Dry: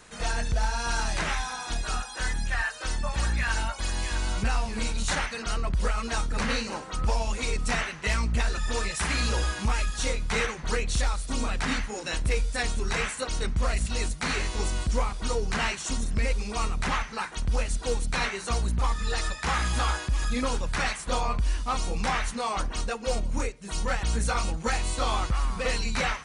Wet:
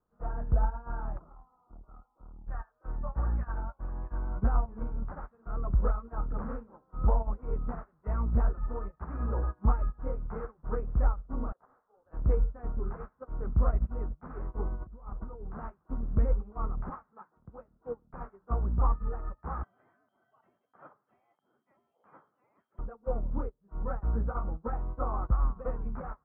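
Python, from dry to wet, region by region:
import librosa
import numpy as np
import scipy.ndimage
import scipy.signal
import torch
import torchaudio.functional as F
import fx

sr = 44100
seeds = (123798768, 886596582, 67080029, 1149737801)

y = fx.chain(x, sr, fx.cheby1_lowpass(hz=1400.0, order=10),
    fx.tube_stage(drive_db=30.0, bias=0.45), at=(1.18, 2.48))
y = fx.chain(y, sr, fx.highpass(hz=470.0, slope=24),
    fx.high_shelf(hz=3300.0, db=-9.0),
    fx.resample_linear(factor=8), at=(11.52, 12.11))
y = fx.chain(y, sr, fx.lowpass(hz=2300.0, slope=12),
    fx.over_compress(threshold_db=-30.0, ratio=-1.0), at=(14.75, 15.6))
y = fx.chain(y, sr, fx.bandpass_edges(low_hz=130.0, high_hz=6100.0),
    fx.high_shelf(hz=2000.0, db=4.0), at=(16.9, 18.14))
y = fx.chain(y, sr, fx.freq_invert(carrier_hz=3200),
    fx.highpass(hz=120.0, slope=24), at=(19.63, 22.79))
y = scipy.signal.sosfilt(scipy.signal.ellip(4, 1.0, 80, 1300.0, 'lowpass', fs=sr, output='sos'), y)
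y = fx.low_shelf(y, sr, hz=420.0, db=4.5)
y = fx.upward_expand(y, sr, threshold_db=-37.0, expansion=2.5)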